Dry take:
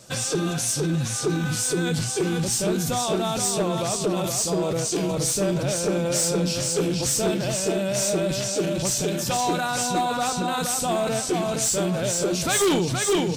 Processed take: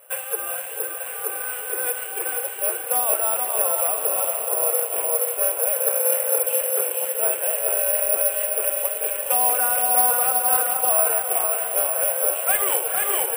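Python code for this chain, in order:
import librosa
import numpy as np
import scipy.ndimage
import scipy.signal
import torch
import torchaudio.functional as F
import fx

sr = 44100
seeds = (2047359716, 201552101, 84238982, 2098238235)

p1 = scipy.signal.sosfilt(scipy.signal.cheby1(4, 1.0, [480.0, 2900.0], 'bandpass', fs=sr, output='sos'), x)
p2 = p1 + fx.echo_diffused(p1, sr, ms=468, feedback_pct=62, wet_db=-6, dry=0)
y = (np.kron(p2[::4], np.eye(4)[0]) * 4)[:len(p2)]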